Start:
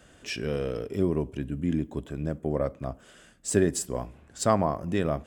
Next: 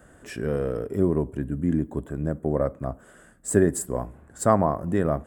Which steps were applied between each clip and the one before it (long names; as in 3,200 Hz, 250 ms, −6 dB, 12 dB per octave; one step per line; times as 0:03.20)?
flat-topped bell 3,800 Hz −13.5 dB
level +3.5 dB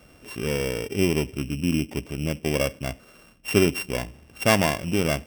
samples sorted by size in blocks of 16 samples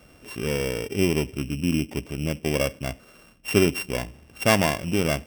no processing that can be heard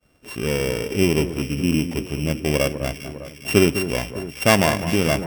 downward expander −43 dBFS
delay that swaps between a low-pass and a high-pass 202 ms, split 1,700 Hz, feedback 74%, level −10 dB
level +3.5 dB